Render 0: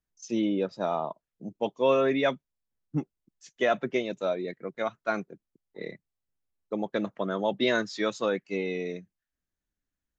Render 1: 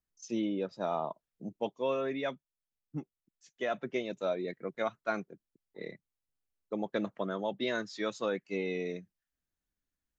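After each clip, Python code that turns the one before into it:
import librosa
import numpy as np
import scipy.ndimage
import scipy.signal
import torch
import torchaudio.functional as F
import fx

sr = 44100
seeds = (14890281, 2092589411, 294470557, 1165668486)

y = fx.rider(x, sr, range_db=4, speed_s=0.5)
y = y * librosa.db_to_amplitude(-5.5)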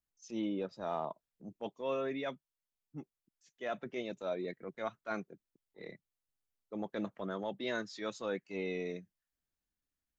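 y = fx.transient(x, sr, attack_db=-7, sustain_db=0)
y = y * librosa.db_to_amplitude(-2.5)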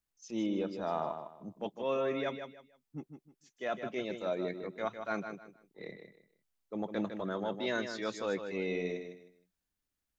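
y = fx.echo_feedback(x, sr, ms=155, feedback_pct=26, wet_db=-8.0)
y = y * librosa.db_to_amplitude(2.5)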